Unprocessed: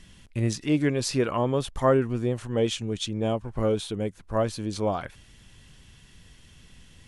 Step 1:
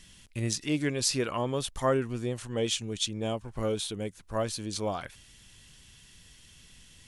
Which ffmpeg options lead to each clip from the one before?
-af "highshelf=f=2.5k:g=11,volume=-6dB"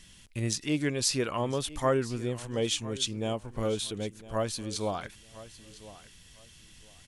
-af "aecho=1:1:1006|2012:0.133|0.0293"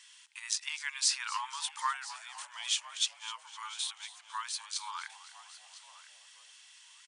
-filter_complex "[0:a]afftfilt=real='re*between(b*sr/4096,850,10000)':imag='im*between(b*sr/4096,850,10000)':win_size=4096:overlap=0.75,asplit=7[a][b][c][d][e][f][g];[b]adelay=255,afreqshift=-70,volume=-16.5dB[h];[c]adelay=510,afreqshift=-140,volume=-21.1dB[i];[d]adelay=765,afreqshift=-210,volume=-25.7dB[j];[e]adelay=1020,afreqshift=-280,volume=-30.2dB[k];[f]adelay=1275,afreqshift=-350,volume=-34.8dB[l];[g]adelay=1530,afreqshift=-420,volume=-39.4dB[m];[a][h][i][j][k][l][m]amix=inputs=7:normalize=0"

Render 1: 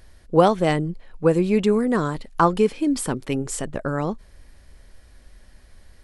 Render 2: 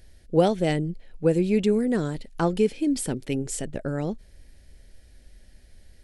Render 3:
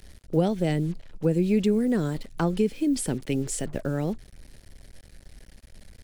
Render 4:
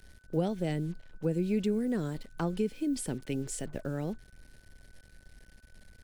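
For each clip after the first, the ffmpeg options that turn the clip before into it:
-af "equalizer=f=1.1k:w=2:g=-15,volume=-2dB"
-filter_complex "[0:a]acrusher=bits=7:mix=0:aa=0.5,acrossover=split=270[a][b];[b]acompressor=threshold=-29dB:ratio=2.5[c];[a][c]amix=inputs=2:normalize=0,volume=1.5dB"
-af "aeval=exprs='val(0)+0.00141*sin(2*PI*1500*n/s)':c=same,volume=-7dB"

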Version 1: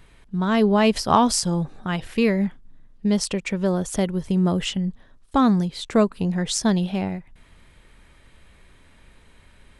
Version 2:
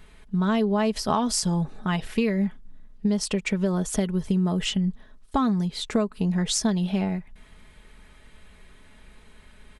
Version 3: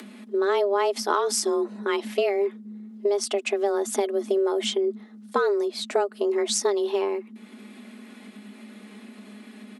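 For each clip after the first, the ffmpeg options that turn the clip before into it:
-af "aecho=1:1:4.7:0.45,acompressor=threshold=-20dB:ratio=6"
-af "afreqshift=200,acompressor=mode=upward:threshold=-37dB:ratio=2.5"

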